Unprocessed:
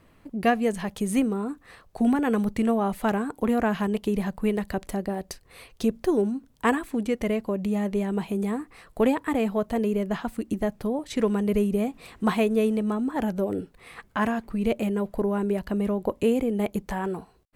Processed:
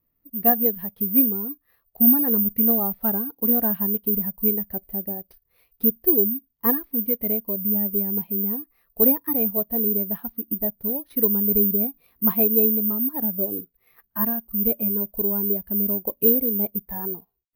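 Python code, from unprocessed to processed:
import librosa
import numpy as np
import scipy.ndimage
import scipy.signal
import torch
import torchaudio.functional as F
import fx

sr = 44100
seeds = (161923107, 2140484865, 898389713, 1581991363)

y = fx.cvsd(x, sr, bps=32000)
y = (np.kron(scipy.signal.resample_poly(y, 1, 3), np.eye(3)[0]) * 3)[:len(y)]
y = fx.spectral_expand(y, sr, expansion=1.5)
y = F.gain(torch.from_numpy(y), -1.0).numpy()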